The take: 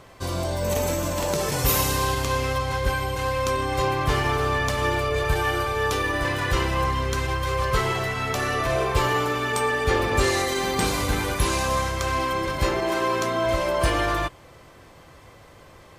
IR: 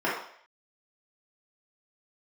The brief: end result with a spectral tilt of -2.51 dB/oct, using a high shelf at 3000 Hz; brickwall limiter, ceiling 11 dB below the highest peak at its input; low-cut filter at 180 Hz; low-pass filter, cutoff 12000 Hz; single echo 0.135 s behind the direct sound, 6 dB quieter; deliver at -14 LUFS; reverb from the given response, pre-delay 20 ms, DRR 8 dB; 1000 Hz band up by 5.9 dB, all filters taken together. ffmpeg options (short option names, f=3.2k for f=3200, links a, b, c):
-filter_complex "[0:a]highpass=180,lowpass=12k,equalizer=f=1k:t=o:g=7.5,highshelf=f=3k:g=-6,alimiter=limit=-19.5dB:level=0:latency=1,aecho=1:1:135:0.501,asplit=2[a][b];[1:a]atrim=start_sample=2205,adelay=20[c];[b][c]afir=irnorm=-1:irlink=0,volume=-22dB[d];[a][d]amix=inputs=2:normalize=0,volume=10.5dB"